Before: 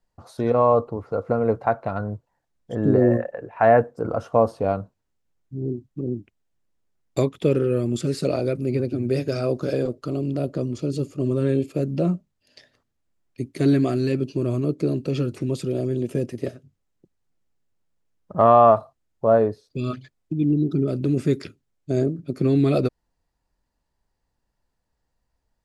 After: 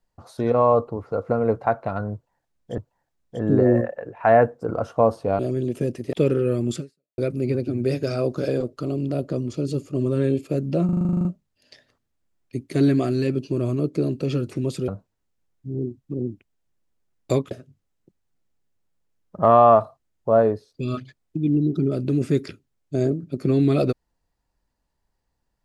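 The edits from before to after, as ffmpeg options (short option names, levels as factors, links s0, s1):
-filter_complex "[0:a]asplit=17[s0][s1][s2][s3][s4][s5][s6][s7][s8][s9][s10][s11][s12][s13][s14][s15][s16];[s0]atrim=end=2.782[s17];[s1]atrim=start=2.138:end=4.752[s18];[s2]atrim=start=15.728:end=16.472[s19];[s3]atrim=start=7.378:end=8.43,asetpts=PTS-STARTPTS,afade=t=out:st=0.652:d=0.4:c=exp[s20];[s4]atrim=start=8.43:end=12.142,asetpts=PTS-STARTPTS,afade=t=in:d=0.004:c=hsin[s21];[s5]atrim=start=12.098:end=12.142[s22];[s6]atrim=start=12.098:end=12.142[s23];[s7]atrim=start=12.098:end=12.142[s24];[s8]atrim=start=12.098:end=12.142[s25];[s9]atrim=start=12.098:end=12.142[s26];[s10]atrim=start=12.098:end=12.142[s27];[s11]atrim=start=12.098:end=12.142[s28];[s12]atrim=start=12.098:end=12.142[s29];[s13]atrim=start=12.098:end=12.142[s30];[s14]atrim=start=12.098:end=15.732[s31];[s15]atrim=start=4.748:end=7.382[s32];[s16]atrim=start=16.468[s33];[s17][s18]acrossfade=d=0.004:c1=hsin:c2=hsin[s34];[s34][s19]acrossfade=d=0.004:c1=hsin:c2=hsin[s35];[s20][s21]concat=n=2:v=0:a=1[s36];[s35][s36]acrossfade=d=0.004:c1=hsin:c2=hsin[s37];[s37][s22]acrossfade=d=0.004:c1=hsin:c2=hsin[s38];[s38][s23]acrossfade=d=0.004:c1=hsin:c2=hsin[s39];[s39][s24]acrossfade=d=0.004:c1=hsin:c2=hsin[s40];[s40][s25]acrossfade=d=0.004:c1=hsin:c2=hsin[s41];[s41][s26]acrossfade=d=0.004:c1=hsin:c2=hsin[s42];[s42][s27]acrossfade=d=0.004:c1=hsin:c2=hsin[s43];[s43][s28]acrossfade=d=0.004:c1=hsin:c2=hsin[s44];[s44][s29]acrossfade=d=0.004:c1=hsin:c2=hsin[s45];[s45][s30]acrossfade=d=0.004:c1=hsin:c2=hsin[s46];[s46][s31]acrossfade=d=0.004:c1=hsin:c2=hsin[s47];[s47][s32]acrossfade=d=0.004:c1=hsin:c2=hsin[s48];[s48][s33]acrossfade=d=0.004:c1=hsin:c2=hsin"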